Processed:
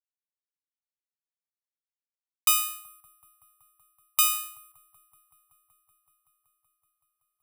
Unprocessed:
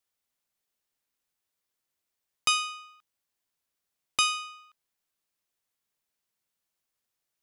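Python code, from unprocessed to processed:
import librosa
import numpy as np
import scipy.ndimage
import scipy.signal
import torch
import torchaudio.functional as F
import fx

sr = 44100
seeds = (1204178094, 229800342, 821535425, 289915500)

p1 = fx.law_mismatch(x, sr, coded='A')
p2 = scipy.signal.sosfilt(scipy.signal.cheby1(5, 1.0, [140.0, 720.0], 'bandstop', fs=sr, output='sos'), p1)
p3 = 10.0 ** (-26.0 / 20.0) * np.tanh(p2 / 10.0 ** (-26.0 / 20.0))
p4 = p2 + (p3 * 10.0 ** (-12.0 / 20.0))
p5 = fx.small_body(p4, sr, hz=(590.0, 1100.0), ring_ms=45, db=7)
p6 = p5 + fx.echo_wet_lowpass(p5, sr, ms=189, feedback_pct=84, hz=480.0, wet_db=-13, dry=0)
p7 = (np.kron(scipy.signal.resample_poly(p6, 1, 4), np.eye(4)[0]) * 4)[:len(p6)]
y = p7 * 10.0 ** (-2.5 / 20.0)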